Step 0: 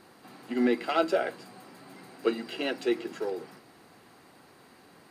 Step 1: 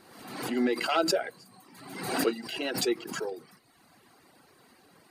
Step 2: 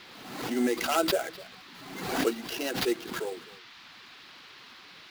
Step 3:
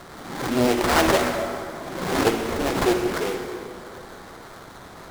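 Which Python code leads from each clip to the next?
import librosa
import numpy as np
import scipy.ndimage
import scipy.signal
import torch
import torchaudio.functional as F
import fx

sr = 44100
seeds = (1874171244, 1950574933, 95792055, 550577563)

y1 = fx.dereverb_blind(x, sr, rt60_s=1.1)
y1 = fx.high_shelf(y1, sr, hz=5000.0, db=4.5)
y1 = fx.pre_swell(y1, sr, db_per_s=56.0)
y1 = y1 * 10.0 ** (-1.5 / 20.0)
y2 = fx.sample_hold(y1, sr, seeds[0], rate_hz=8500.0, jitter_pct=20)
y2 = fx.dmg_noise_band(y2, sr, seeds[1], low_hz=960.0, high_hz=4500.0, level_db=-51.0)
y2 = y2 + 10.0 ** (-20.0 / 20.0) * np.pad(y2, (int(254 * sr / 1000.0), 0))[:len(y2)]
y3 = fx.sample_hold(y2, sr, seeds[2], rate_hz=2700.0, jitter_pct=20)
y3 = fx.rev_plate(y3, sr, seeds[3], rt60_s=2.7, hf_ratio=0.65, predelay_ms=0, drr_db=3.0)
y3 = fx.doppler_dist(y3, sr, depth_ms=0.69)
y3 = y3 * 10.0 ** (6.5 / 20.0)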